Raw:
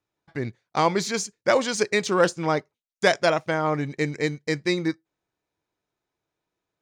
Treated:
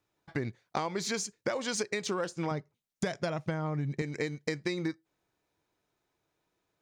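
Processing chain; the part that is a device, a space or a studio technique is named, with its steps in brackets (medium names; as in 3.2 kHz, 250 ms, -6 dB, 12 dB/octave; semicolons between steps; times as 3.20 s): 2.51–4.02 s: peaking EQ 140 Hz +12.5 dB 1.6 oct; serial compression, leveller first (compression 2.5:1, threshold -24 dBFS, peak gain reduction 8.5 dB; compression, threshold -33 dBFS, peak gain reduction 13.5 dB); trim +3.5 dB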